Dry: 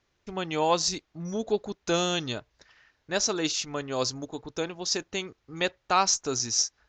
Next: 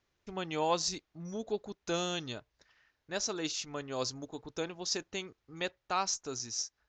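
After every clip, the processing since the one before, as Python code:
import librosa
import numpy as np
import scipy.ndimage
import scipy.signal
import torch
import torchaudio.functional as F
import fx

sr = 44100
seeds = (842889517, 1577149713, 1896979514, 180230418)

y = fx.rider(x, sr, range_db=5, speed_s=2.0)
y = y * 10.0 ** (-8.5 / 20.0)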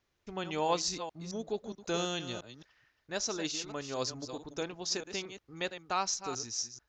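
y = fx.reverse_delay(x, sr, ms=219, wet_db=-10)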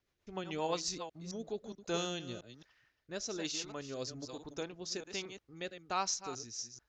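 y = fx.rotary_switch(x, sr, hz=7.5, then_hz=1.2, switch_at_s=1.16)
y = y * 10.0 ** (-1.5 / 20.0)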